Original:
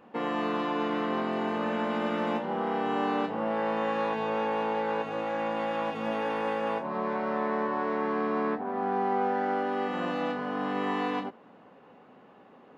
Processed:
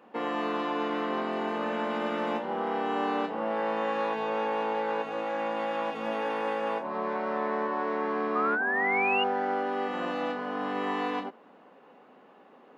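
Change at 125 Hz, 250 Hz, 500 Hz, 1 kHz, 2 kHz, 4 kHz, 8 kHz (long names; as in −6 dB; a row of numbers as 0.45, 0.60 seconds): −6.0 dB, −2.5 dB, −0.5 dB, 0.0 dB, +4.0 dB, +2.0 dB, can't be measured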